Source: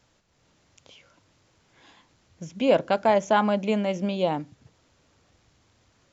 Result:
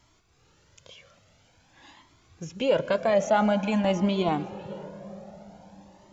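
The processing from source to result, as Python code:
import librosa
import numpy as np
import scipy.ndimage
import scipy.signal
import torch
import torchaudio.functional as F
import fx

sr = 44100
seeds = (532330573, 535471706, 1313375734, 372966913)

p1 = fx.over_compress(x, sr, threshold_db=-24.0, ratio=-0.5)
p2 = x + (p1 * 10.0 ** (-2.0 / 20.0))
p3 = fx.low_shelf(p2, sr, hz=200.0, db=8.5, at=(3.84, 4.29))
p4 = p3 + 10.0 ** (-21.5 / 20.0) * np.pad(p3, (int(501 * sr / 1000.0), 0))[:len(p3)]
p5 = fx.rev_plate(p4, sr, seeds[0], rt60_s=5.0, hf_ratio=0.35, predelay_ms=105, drr_db=14.0)
y = fx.comb_cascade(p5, sr, direction='rising', hz=0.49)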